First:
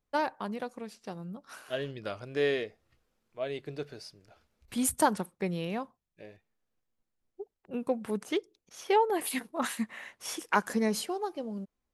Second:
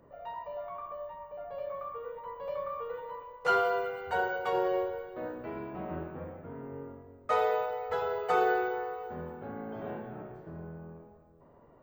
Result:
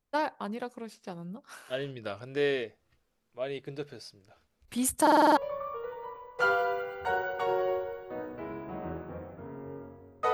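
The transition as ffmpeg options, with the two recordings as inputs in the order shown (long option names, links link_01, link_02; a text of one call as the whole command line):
ffmpeg -i cue0.wav -i cue1.wav -filter_complex "[0:a]apad=whole_dur=10.33,atrim=end=10.33,asplit=7[link_01][link_02][link_03][link_04][link_05][link_06][link_07];[link_01]atrim=end=5.072[link_08];[link_02]atrim=start=5.018:end=5.072[link_09];[link_03]atrim=start=5.018:end=5.072[link_10];[link_04]atrim=start=5.018:end=5.072[link_11];[link_05]atrim=start=5.018:end=5.072[link_12];[link_06]atrim=start=5.018:end=5.072[link_13];[link_07]atrim=start=5.018:end=5.072[link_14];[1:a]atrim=start=2.428:end=7.39[link_15];[link_08][link_09]acrossfade=duration=0.004:curve1=hsin:curve2=hsin[link_16];[link_16][link_10]acrossfade=duration=0.004:curve1=hsin:curve2=hsin[link_17];[link_17][link_11]acrossfade=duration=0.004:curve1=hsin:curve2=hsin[link_18];[link_18][link_12]acrossfade=duration=0.004:curve1=hsin:curve2=hsin[link_19];[link_19][link_13]acrossfade=duration=0.004:curve1=hsin:curve2=hsin[link_20];[link_20][link_14]acrossfade=duration=0.004:curve1=hsin:curve2=hsin[link_21];[link_21][link_15]acrossfade=duration=0.004:curve1=hsin:curve2=hsin" out.wav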